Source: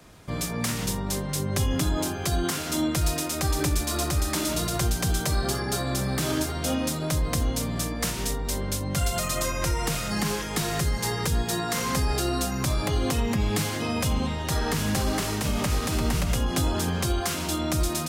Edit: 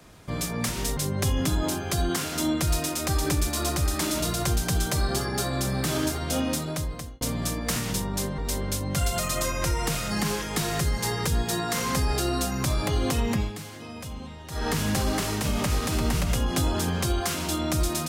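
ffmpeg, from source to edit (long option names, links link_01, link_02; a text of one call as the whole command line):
ffmpeg -i in.wav -filter_complex "[0:a]asplit=8[link_01][link_02][link_03][link_04][link_05][link_06][link_07][link_08];[link_01]atrim=end=0.692[link_09];[link_02]atrim=start=8.098:end=8.382[link_10];[link_03]atrim=start=1.308:end=7.55,asetpts=PTS-STARTPTS,afade=type=out:start_time=5.582:duration=0.66[link_11];[link_04]atrim=start=7.55:end=8.102,asetpts=PTS-STARTPTS,afade=type=in:duration=0.004:curve=hsin[link_12];[link_05]atrim=start=0.688:end=1.312[link_13];[link_06]atrim=start=8.378:end=13.53,asetpts=PTS-STARTPTS,afade=type=out:start_time=4.992:duration=0.16:silence=0.251189[link_14];[link_07]atrim=start=13.53:end=14.51,asetpts=PTS-STARTPTS,volume=-12dB[link_15];[link_08]atrim=start=14.51,asetpts=PTS-STARTPTS,afade=type=in:duration=0.16:silence=0.251189[link_16];[link_09][link_10]acrossfade=duration=0.004:curve1=hsin:curve2=hsin[link_17];[link_11][link_12]concat=n=2:v=0:a=1[link_18];[link_17][link_18]acrossfade=duration=0.004:curve1=hsin:curve2=hsin[link_19];[link_19][link_13]acrossfade=duration=0.004:curve1=hsin:curve2=hsin[link_20];[link_14][link_15][link_16]concat=n=3:v=0:a=1[link_21];[link_20][link_21]acrossfade=duration=0.004:curve1=hsin:curve2=hsin" out.wav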